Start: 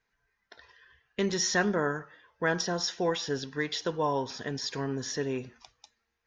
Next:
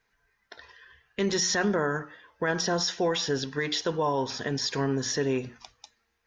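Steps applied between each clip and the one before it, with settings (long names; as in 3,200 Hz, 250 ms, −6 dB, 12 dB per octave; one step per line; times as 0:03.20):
mains-hum notches 60/120/180/240/300 Hz
brickwall limiter −23 dBFS, peak gain reduction 7.5 dB
level +5.5 dB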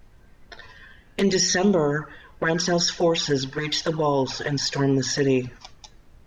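flanger swept by the level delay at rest 11 ms, full sweep at −22 dBFS
background noise brown −57 dBFS
level +7.5 dB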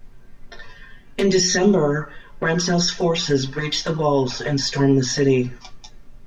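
convolution reverb, pre-delay 4 ms, DRR 2 dB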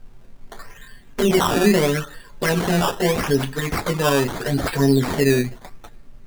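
sample-and-hold swept by an LFO 14×, swing 100% 0.79 Hz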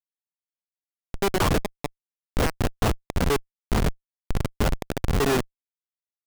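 peak hold with a rise ahead of every peak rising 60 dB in 0.38 s
linear-prediction vocoder at 8 kHz pitch kept
comparator with hysteresis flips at −19.5 dBFS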